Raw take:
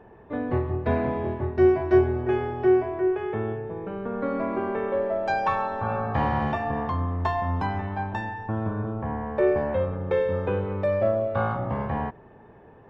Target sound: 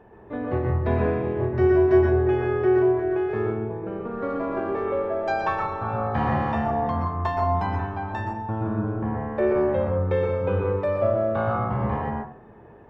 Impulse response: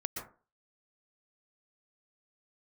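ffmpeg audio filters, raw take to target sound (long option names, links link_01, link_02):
-filter_complex "[1:a]atrim=start_sample=2205[link_01];[0:a][link_01]afir=irnorm=-1:irlink=0,asettb=1/sr,asplit=3[link_02][link_03][link_04];[link_02]atrim=end=2.754[link_05];[link_03]atrim=start=2.75:end=4.86,asetpts=PTS-STARTPTS,afade=type=in:duration=0.004:curve=qsin,afade=type=out:start_time=2.106:duration=0.004:curve=qsin,adynamicsmooth=sensitivity=4:basefreq=4400[link_06];[link_04]atrim=start=4.856[link_07];[link_05][link_06]acrossfade=duration=0.004:curve1=hsin:curve2=qsin[link_08];[link_08][link_07]acrossfade=duration=0.004:curve1=qsin:curve2=hsin"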